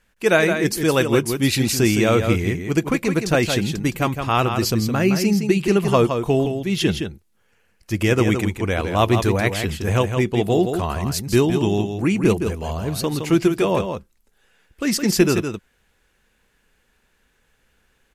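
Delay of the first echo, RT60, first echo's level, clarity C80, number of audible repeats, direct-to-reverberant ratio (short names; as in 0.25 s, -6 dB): 0.165 s, none, -7.0 dB, none, 1, none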